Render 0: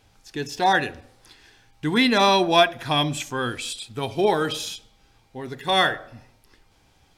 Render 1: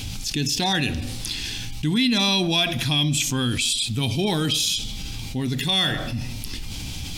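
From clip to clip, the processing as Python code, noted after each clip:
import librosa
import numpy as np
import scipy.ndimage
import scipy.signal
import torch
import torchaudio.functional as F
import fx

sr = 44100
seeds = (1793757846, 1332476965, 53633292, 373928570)

y = fx.band_shelf(x, sr, hz=830.0, db=-15.0, octaves=2.7)
y = fx.env_flatten(y, sr, amount_pct=70)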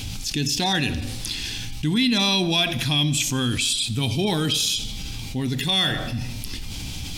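y = fx.echo_feedback(x, sr, ms=89, feedback_pct=59, wet_db=-20)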